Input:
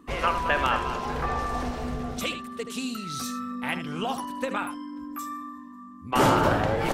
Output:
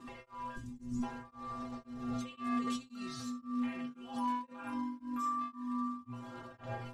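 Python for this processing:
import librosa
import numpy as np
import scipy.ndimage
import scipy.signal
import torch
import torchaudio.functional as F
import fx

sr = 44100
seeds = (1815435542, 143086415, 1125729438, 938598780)

y = fx.fade_out_tail(x, sr, length_s=1.18)
y = fx.ellip_bandstop(y, sr, low_hz=250.0, high_hz=6500.0, order=3, stop_db=40, at=(0.54, 1.02), fade=0.02)
y = fx.over_compress(y, sr, threshold_db=-38.0, ratio=-1.0)
y = fx.dmg_crackle(y, sr, seeds[0], per_s=490.0, level_db=-44.0)
y = fx.stiff_resonator(y, sr, f0_hz=120.0, decay_s=0.43, stiffness=0.008)
y = np.clip(y, -10.0 ** (-36.0 / 20.0), 10.0 ** (-36.0 / 20.0))
y = fx.air_absorb(y, sr, metres=55.0)
y = fx.echo_filtered(y, sr, ms=639, feedback_pct=68, hz=2000.0, wet_db=-17.0)
y = y * np.abs(np.cos(np.pi * 1.9 * np.arange(len(y)) / sr))
y = y * 10.0 ** (8.5 / 20.0)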